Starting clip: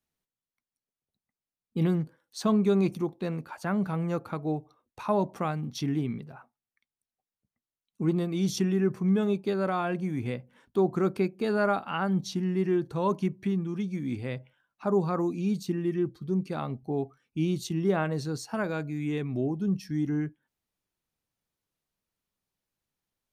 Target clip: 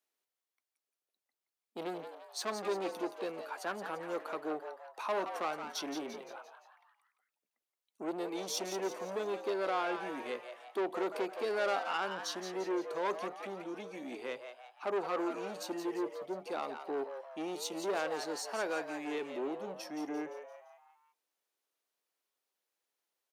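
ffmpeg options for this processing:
ffmpeg -i in.wav -filter_complex "[0:a]asoftclip=type=tanh:threshold=-27.5dB,highpass=frequency=350:width=0.5412,highpass=frequency=350:width=1.3066,asplit=6[link_01][link_02][link_03][link_04][link_05][link_06];[link_02]adelay=172,afreqshift=120,volume=-8.5dB[link_07];[link_03]adelay=344,afreqshift=240,volume=-14.9dB[link_08];[link_04]adelay=516,afreqshift=360,volume=-21.3dB[link_09];[link_05]adelay=688,afreqshift=480,volume=-27.6dB[link_10];[link_06]adelay=860,afreqshift=600,volume=-34dB[link_11];[link_01][link_07][link_08][link_09][link_10][link_11]amix=inputs=6:normalize=0" out.wav

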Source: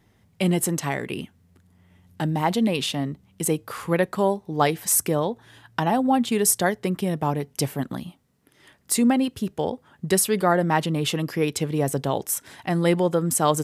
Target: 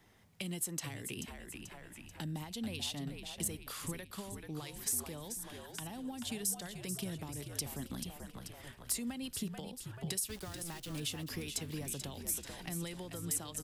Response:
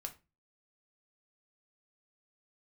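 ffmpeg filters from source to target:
-filter_complex "[0:a]equalizer=frequency=110:width=0.31:gain=-8,acrossover=split=750[link_01][link_02];[link_01]alimiter=limit=-22dB:level=0:latency=1:release=382[link_03];[link_03][link_02]amix=inputs=2:normalize=0,acompressor=threshold=-33dB:ratio=6,asettb=1/sr,asplit=3[link_04][link_05][link_06];[link_04]atrim=end=10.294[link_07];[link_05]atrim=start=10.29:end=11,asetpts=PTS-STARTPTS,afade=type=in:duration=0.004:curve=qsin,afade=type=out:start_time=0.706:duration=0.004:curve=qsin,aeval=exprs='val(0)*gte(abs(val(0)),0.00794)':channel_layout=same[link_08];[link_06]atrim=start=10.996[link_09];[link_07][link_08]acrossfade=duration=0.004:curve1=hsin:curve2=qsin[link_10];[link_10][link_09]acrossfade=duration=0.004:curve1=qsin:curve2=hsin,asplit=2[link_11][link_12];[link_12]asplit=6[link_13][link_14][link_15][link_16][link_17][link_18];[link_13]adelay=436,afreqshift=-65,volume=-9dB[link_19];[link_14]adelay=872,afreqshift=-130,volume=-14.5dB[link_20];[link_15]adelay=1308,afreqshift=-195,volume=-20dB[link_21];[link_16]adelay=1744,afreqshift=-260,volume=-25.5dB[link_22];[link_17]adelay=2180,afreqshift=-325,volume=-31.1dB[link_23];[link_18]adelay=2616,afreqshift=-390,volume=-36.6dB[link_24];[link_19][link_20][link_21][link_22][link_23][link_24]amix=inputs=6:normalize=0[link_25];[link_11][link_25]amix=inputs=2:normalize=0,asoftclip=type=tanh:threshold=-20dB,acrossover=split=280|3000[link_26][link_27][link_28];[link_27]acompressor=threshold=-50dB:ratio=6[link_29];[link_26][link_29][link_28]amix=inputs=3:normalize=0"

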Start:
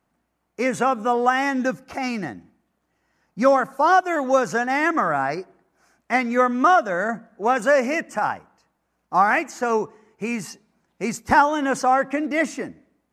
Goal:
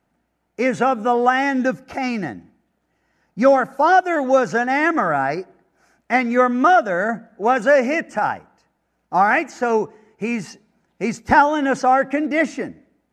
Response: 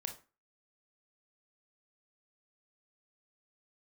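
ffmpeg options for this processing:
-filter_complex "[0:a]acrossover=split=7400[link_01][link_02];[link_02]acompressor=threshold=-54dB:ratio=4:attack=1:release=60[link_03];[link_01][link_03]amix=inputs=2:normalize=0,highshelf=frequency=4700:gain=-5.5,bandreject=frequency=1100:width=5.8,volume=3.5dB"

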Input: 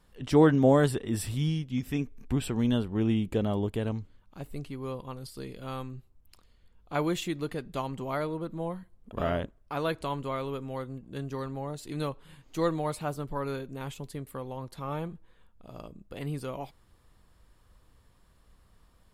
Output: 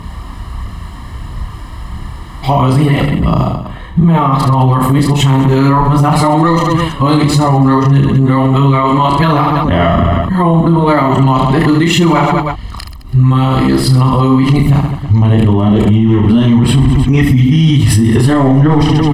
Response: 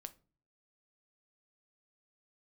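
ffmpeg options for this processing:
-filter_complex "[0:a]areverse,highpass=44,asplit=2[link_01][link_02];[link_02]asoftclip=type=hard:threshold=-22dB,volume=-5dB[link_03];[link_01][link_03]amix=inputs=2:normalize=0,aphaser=in_gain=1:out_gain=1:delay=4:decay=0.39:speed=1.5:type=triangular,lowpass=frequency=2700:poles=1,bandreject=frequency=830:width=15,asplit=2[link_04][link_05];[link_05]aecho=0:1:30|72|130.8|213.1|328.4:0.631|0.398|0.251|0.158|0.1[link_06];[link_04][link_06]amix=inputs=2:normalize=0,acompressor=threshold=-28dB:ratio=6,aecho=1:1:1:0.67,alimiter=level_in=29.5dB:limit=-1dB:release=50:level=0:latency=1,volume=-1dB"

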